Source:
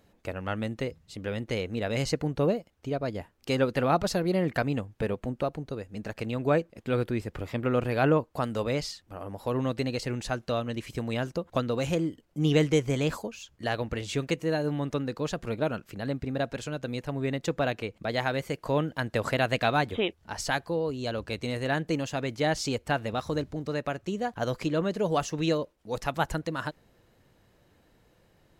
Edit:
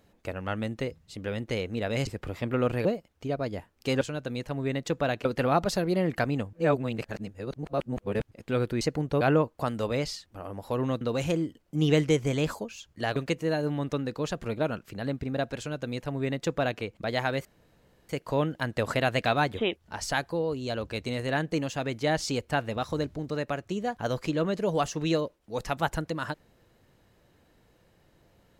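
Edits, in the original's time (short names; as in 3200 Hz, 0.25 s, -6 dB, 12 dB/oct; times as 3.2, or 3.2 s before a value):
2.07–2.47 swap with 7.19–7.97
4.91–6.69 reverse
9.77–11.64 cut
13.79–14.17 cut
16.59–17.83 copy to 3.63
18.46 insert room tone 0.64 s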